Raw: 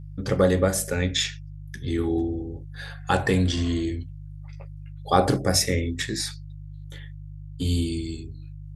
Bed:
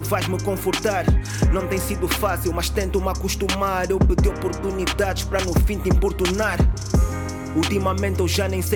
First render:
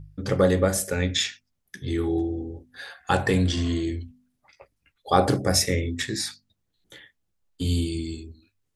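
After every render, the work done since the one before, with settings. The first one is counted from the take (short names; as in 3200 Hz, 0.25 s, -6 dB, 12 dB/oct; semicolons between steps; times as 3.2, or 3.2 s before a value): de-hum 50 Hz, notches 5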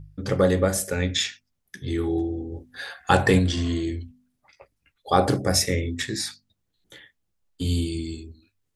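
2.52–3.39 gain +4 dB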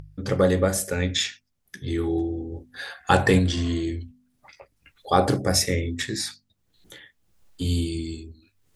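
upward compressor, threshold -41 dBFS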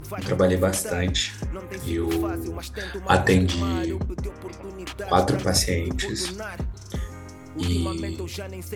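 add bed -12.5 dB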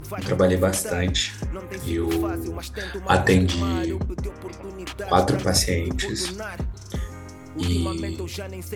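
gain +1 dB; limiter -3 dBFS, peak gain reduction 1.5 dB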